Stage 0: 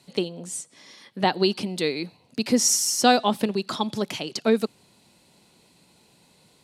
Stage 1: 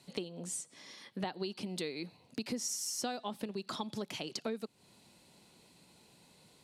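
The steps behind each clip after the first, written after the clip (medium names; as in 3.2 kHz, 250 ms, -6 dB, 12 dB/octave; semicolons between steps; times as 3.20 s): compression 5:1, threshold -32 dBFS, peak gain reduction 18.5 dB; trim -4 dB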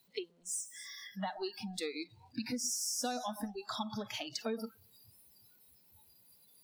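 jump at every zero crossing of -44.5 dBFS; echo whose repeats swap between lows and highs 121 ms, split 1.2 kHz, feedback 60%, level -9.5 dB; spectral noise reduction 27 dB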